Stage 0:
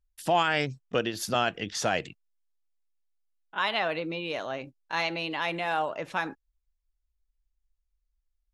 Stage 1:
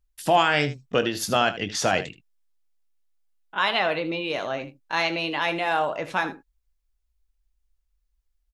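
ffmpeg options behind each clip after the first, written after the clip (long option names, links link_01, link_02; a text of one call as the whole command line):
ffmpeg -i in.wav -af "aecho=1:1:21|78:0.266|0.2,volume=4.5dB" out.wav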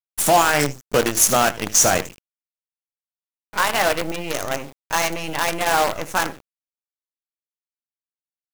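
ffmpeg -i in.wav -filter_complex "[0:a]firequalizer=gain_entry='entry(1300,0);entry(4000,-12);entry(6000,14)':delay=0.05:min_phase=1,asplit=2[link_01][link_02];[link_02]alimiter=limit=-12.5dB:level=0:latency=1:release=166,volume=-2dB[link_03];[link_01][link_03]amix=inputs=2:normalize=0,acrusher=bits=4:dc=4:mix=0:aa=0.000001" out.wav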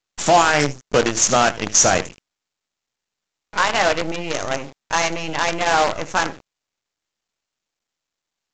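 ffmpeg -i in.wav -af "volume=1.5dB" -ar 16000 -c:a pcm_mulaw out.wav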